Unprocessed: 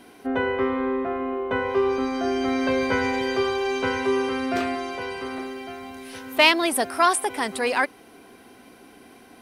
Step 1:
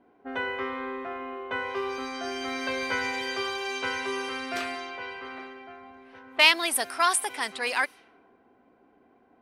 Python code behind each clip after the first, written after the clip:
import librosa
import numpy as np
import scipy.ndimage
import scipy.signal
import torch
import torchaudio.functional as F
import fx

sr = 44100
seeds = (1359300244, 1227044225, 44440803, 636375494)

y = fx.env_lowpass(x, sr, base_hz=610.0, full_db=-21.0)
y = fx.tilt_shelf(y, sr, db=-7.5, hz=750.0)
y = y * librosa.db_to_amplitude(-7.0)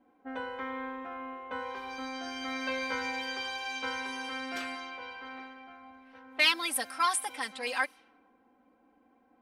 y = x + 0.91 * np.pad(x, (int(3.8 * sr / 1000.0), 0))[:len(x)]
y = y * librosa.db_to_amplitude(-8.0)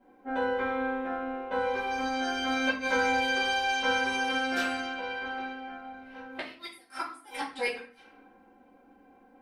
y = fx.gate_flip(x, sr, shuts_db=-22.0, range_db=-34)
y = fx.room_shoebox(y, sr, seeds[0], volume_m3=40.0, walls='mixed', distance_m=1.2)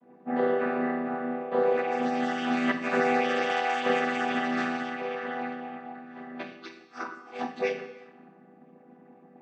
y = fx.chord_vocoder(x, sr, chord='minor triad', root=52)
y = fx.rev_gated(y, sr, seeds[1], gate_ms=400, shape='falling', drr_db=10.0)
y = y * librosa.db_to_amplitude(4.0)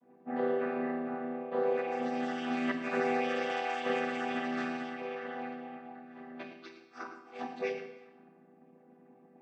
y = fx.comb_fb(x, sr, f0_hz=130.0, decay_s=0.69, harmonics='all', damping=0.0, mix_pct=60)
y = y + 10.0 ** (-11.5 / 20.0) * np.pad(y, (int(109 * sr / 1000.0), 0))[:len(y)]